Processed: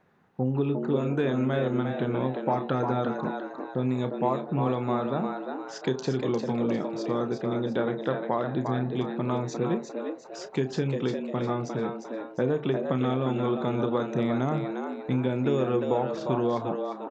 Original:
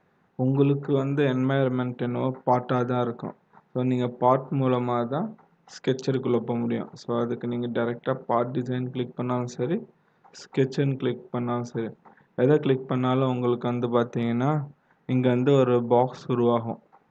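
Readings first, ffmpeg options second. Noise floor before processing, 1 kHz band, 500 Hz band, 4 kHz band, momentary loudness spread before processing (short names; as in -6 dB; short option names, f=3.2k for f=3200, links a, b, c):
-65 dBFS, -3.0 dB, -2.5 dB, -2.0 dB, 10 LU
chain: -filter_complex "[0:a]asplit=2[a][b];[b]adelay=31,volume=-12dB[c];[a][c]amix=inputs=2:normalize=0,acompressor=threshold=-23dB:ratio=4,asplit=6[d][e][f][g][h][i];[e]adelay=352,afreqshift=100,volume=-6dB[j];[f]adelay=704,afreqshift=200,volume=-14.2dB[k];[g]adelay=1056,afreqshift=300,volume=-22.4dB[l];[h]adelay=1408,afreqshift=400,volume=-30.5dB[m];[i]adelay=1760,afreqshift=500,volume=-38.7dB[n];[d][j][k][l][m][n]amix=inputs=6:normalize=0"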